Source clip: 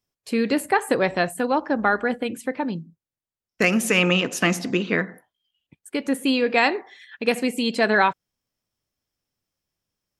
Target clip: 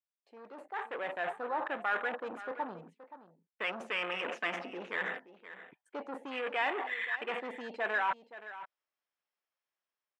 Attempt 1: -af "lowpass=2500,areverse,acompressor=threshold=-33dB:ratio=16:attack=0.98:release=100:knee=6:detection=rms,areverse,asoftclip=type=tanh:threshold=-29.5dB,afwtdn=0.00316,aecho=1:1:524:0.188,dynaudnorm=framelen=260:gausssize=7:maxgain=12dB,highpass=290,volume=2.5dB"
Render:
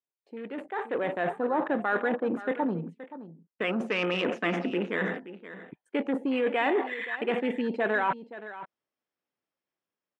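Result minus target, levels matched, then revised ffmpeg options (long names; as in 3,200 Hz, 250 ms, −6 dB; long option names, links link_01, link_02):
250 Hz band +10.5 dB; soft clipping: distortion −11 dB
-af "lowpass=2500,areverse,acompressor=threshold=-33dB:ratio=16:attack=0.98:release=100:knee=6:detection=rms,areverse,asoftclip=type=tanh:threshold=-37dB,afwtdn=0.00316,aecho=1:1:524:0.188,dynaudnorm=framelen=260:gausssize=7:maxgain=12dB,highpass=780,volume=2.5dB"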